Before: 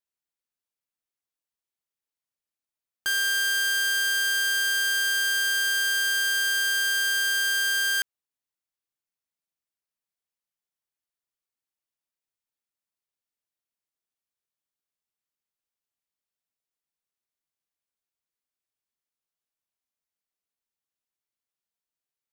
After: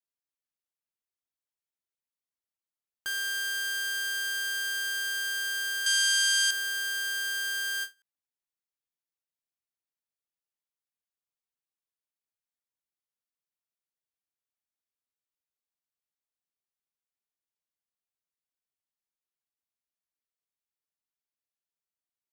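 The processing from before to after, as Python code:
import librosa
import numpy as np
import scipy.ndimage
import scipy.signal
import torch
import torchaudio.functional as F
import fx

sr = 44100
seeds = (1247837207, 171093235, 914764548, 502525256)

y = fx.weighting(x, sr, curve='ITU-R 468', at=(5.86, 6.51))
y = fx.end_taper(y, sr, db_per_s=330.0)
y = y * 10.0 ** (-7.0 / 20.0)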